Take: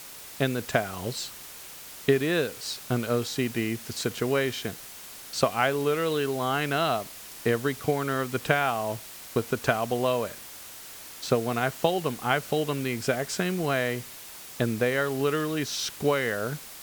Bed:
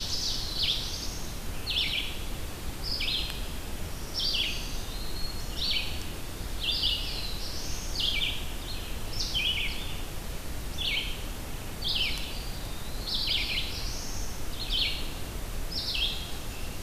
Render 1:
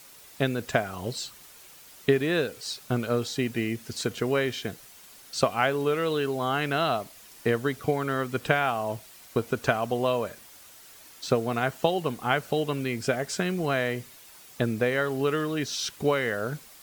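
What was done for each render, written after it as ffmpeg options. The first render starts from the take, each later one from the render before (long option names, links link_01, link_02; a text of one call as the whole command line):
ffmpeg -i in.wav -af "afftdn=noise_reduction=8:noise_floor=-44" out.wav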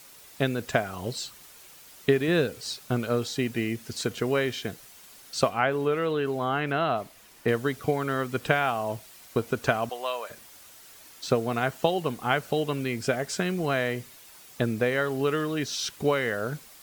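ffmpeg -i in.wav -filter_complex "[0:a]asettb=1/sr,asplit=3[link_01][link_02][link_03];[link_01]atrim=end=2.284[link_04];[link_02]atrim=start=2.28:end=2.76,asetpts=PTS-STARTPTS,afade=type=in:duration=0.004:curve=qsin,afade=type=out:start_time=0.476:duration=0.004:curve=qsin,equalizer=frequency=92:width=0.33:gain=6.5[link_05];[link_03]atrim=start=2.756[link_06];[link_04][link_05]acrossfade=duration=0.004:curve1=hsin:curve2=qsin[link_07];[link_07][link_06]acrossfade=duration=0.004:curve1=qsin:curve2=hsin,asettb=1/sr,asplit=3[link_08][link_09][link_10];[link_08]atrim=end=5.494[link_11];[link_09]atrim=start=5.49:end=7.48,asetpts=PTS-STARTPTS,afade=type=in:duration=0.004:curve=qsin,afade=type=out:start_time=1.986:duration=0.004:curve=qsin,acrossover=split=3000[link_12][link_13];[link_13]acompressor=threshold=-51dB:ratio=4:attack=1:release=60[link_14];[link_12][link_14]amix=inputs=2:normalize=0[link_15];[link_10]atrim=start=7.476[link_16];[link_11][link_15]acrossfade=duration=0.004:curve1=hsin:curve2=qsin[link_17];[link_17][link_16]acrossfade=duration=0.004:curve1=qsin:curve2=hsin,asettb=1/sr,asplit=3[link_18][link_19][link_20];[link_18]atrim=end=9.894[link_21];[link_19]atrim=start=9.89:end=10.3,asetpts=PTS-STARTPTS,afade=type=in:duration=0.004:curve=qsin,afade=type=out:start_time=0.406:duration=0.004:curve=qsin,highpass=800[link_22];[link_20]atrim=start=10.296[link_23];[link_21][link_22]acrossfade=duration=0.004:curve1=hsin:curve2=qsin[link_24];[link_24][link_23]acrossfade=duration=0.004:curve1=qsin:curve2=hsin" out.wav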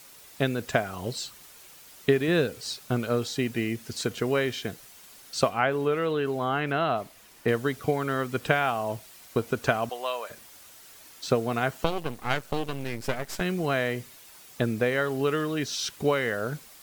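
ffmpeg -i in.wav -filter_complex "[0:a]asettb=1/sr,asplit=3[link_01][link_02][link_03];[link_01]atrim=end=11.844[link_04];[link_02]atrim=start=11.84:end=13.41,asetpts=PTS-STARTPTS,afade=type=in:duration=0.004:curve=qsin,afade=type=out:start_time=1.566:duration=0.004:curve=qsin,aeval=exprs='max(val(0),0)':channel_layout=same[link_05];[link_03]atrim=start=13.406[link_06];[link_04][link_05]acrossfade=duration=0.004:curve1=hsin:curve2=qsin[link_07];[link_07][link_06]acrossfade=duration=0.004:curve1=qsin:curve2=hsin" out.wav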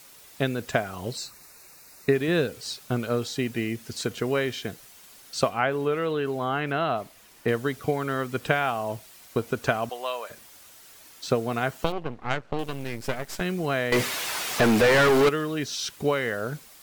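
ffmpeg -i in.wav -filter_complex "[0:a]asettb=1/sr,asplit=3[link_01][link_02][link_03];[link_01]atrim=end=1.174[link_04];[link_02]atrim=start=1.17:end=2.15,asetpts=PTS-STARTPTS,afade=type=in:duration=0.004:curve=qsin,afade=type=out:start_time=0.976:duration=0.004:curve=qsin,asuperstop=centerf=3200:order=4:qfactor=3[link_05];[link_03]atrim=start=2.146[link_06];[link_04][link_05]acrossfade=duration=0.004:curve1=hsin:curve2=qsin[link_07];[link_07][link_06]acrossfade=duration=0.004:curve1=qsin:curve2=hsin,asettb=1/sr,asplit=3[link_08][link_09][link_10];[link_08]atrim=end=11.924[link_11];[link_09]atrim=start=11.92:end=12.59,asetpts=PTS-STARTPTS,afade=type=in:duration=0.004:curve=qsin,afade=type=out:start_time=0.666:duration=0.004:curve=qsin,adynamicsmooth=sensitivity=1:basefreq=2500[link_12];[link_10]atrim=start=12.586[link_13];[link_11][link_12]acrossfade=duration=0.004:curve1=hsin:curve2=qsin[link_14];[link_14][link_13]acrossfade=duration=0.004:curve1=qsin:curve2=hsin,asettb=1/sr,asplit=3[link_15][link_16][link_17];[link_15]atrim=end=13.924[link_18];[link_16]atrim=start=13.92:end=15.29,asetpts=PTS-STARTPTS,afade=type=in:duration=0.004:curve=qsin,afade=type=out:start_time=1.366:duration=0.004:curve=qsin,asplit=2[link_19][link_20];[link_20]highpass=frequency=720:poles=1,volume=35dB,asoftclip=type=tanh:threshold=-11.5dB[link_21];[link_19][link_21]amix=inputs=2:normalize=0,lowpass=frequency=2900:poles=1,volume=-6dB[link_22];[link_17]atrim=start=15.286[link_23];[link_18][link_22]acrossfade=duration=0.004:curve1=hsin:curve2=qsin[link_24];[link_24][link_23]acrossfade=duration=0.004:curve1=qsin:curve2=hsin" out.wav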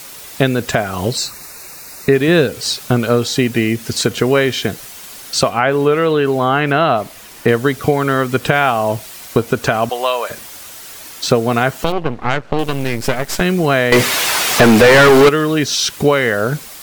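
ffmpeg -i in.wav -filter_complex "[0:a]asplit=2[link_01][link_02];[link_02]acompressor=threshold=-31dB:ratio=6,volume=2dB[link_03];[link_01][link_03]amix=inputs=2:normalize=0,alimiter=level_in=9dB:limit=-1dB:release=50:level=0:latency=1" out.wav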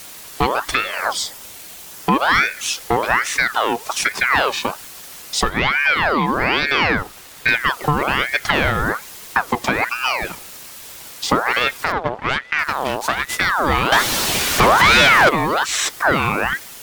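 ffmpeg -i in.wav -af "asoftclip=type=tanh:threshold=-3dB,aeval=exprs='val(0)*sin(2*PI*1300*n/s+1300*0.55/1.2*sin(2*PI*1.2*n/s))':channel_layout=same" out.wav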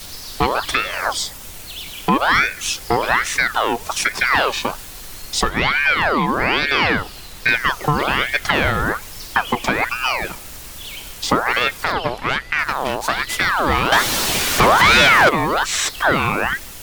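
ffmpeg -i in.wav -i bed.wav -filter_complex "[1:a]volume=-5dB[link_01];[0:a][link_01]amix=inputs=2:normalize=0" out.wav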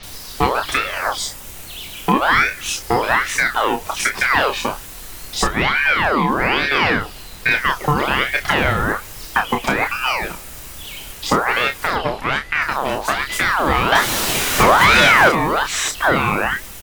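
ffmpeg -i in.wav -filter_complex "[0:a]asplit=2[link_01][link_02];[link_02]adelay=29,volume=-7dB[link_03];[link_01][link_03]amix=inputs=2:normalize=0,acrossover=split=4600[link_04][link_05];[link_05]adelay=30[link_06];[link_04][link_06]amix=inputs=2:normalize=0" out.wav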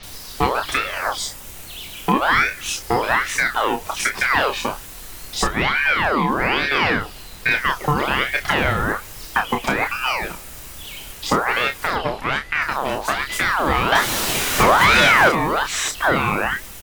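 ffmpeg -i in.wav -af "volume=-2dB" out.wav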